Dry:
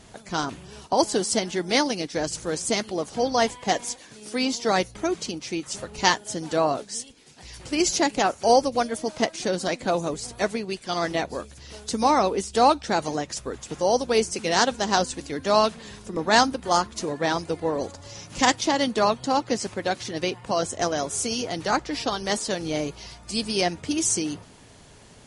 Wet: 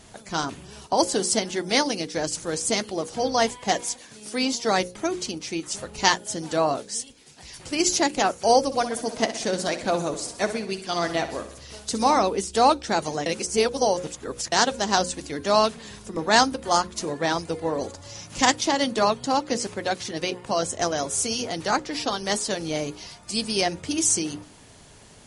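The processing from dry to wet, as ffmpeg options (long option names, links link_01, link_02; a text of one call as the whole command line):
ffmpeg -i in.wav -filter_complex "[0:a]asettb=1/sr,asplit=3[link_01][link_02][link_03];[link_01]atrim=end=8.614[link_04];[link_02]atrim=start=8.61:end=12.17,asetpts=PTS-STARTPTS,afade=type=in:duration=0.004:curve=qsin,afade=type=out:start_time=3.556:duration=0.004:curve=qsin,aecho=1:1:63|126|189|252|315|378:0.251|0.146|0.0845|0.049|0.0284|0.0165,atrim=end_sample=156996[link_05];[link_03]atrim=start=12.166[link_06];[link_04][link_05]acrossfade=duration=0.004:curve1=hsin:curve2=qsin[link_07];[link_07][link_06]acrossfade=duration=0.004:curve1=qsin:curve2=hsin,asplit=3[link_08][link_09][link_10];[link_08]atrim=end=13.262[link_11];[link_09]atrim=start=13.258:end=14.522,asetpts=PTS-STARTPTS,areverse[link_12];[link_10]atrim=start=14.518[link_13];[link_11][link_12]acrossfade=duration=0.004:curve1=hsin:curve2=hsin[link_14];[link_14][link_13]acrossfade=duration=0.004:curve1=hsin:curve2=hsin,highshelf=frequency=7300:gain=5,bandreject=frequency=60:width_type=h:width=6,bandreject=frequency=120:width_type=h:width=6,bandreject=frequency=180:width_type=h:width=6,bandreject=frequency=240:width_type=h:width=6,bandreject=frequency=300:width_type=h:width=6,bandreject=frequency=360:width_type=h:width=6,bandreject=frequency=420:width_type=h:width=6,bandreject=frequency=480:width_type=h:width=6,bandreject=frequency=540:width_type=h:width=6" out.wav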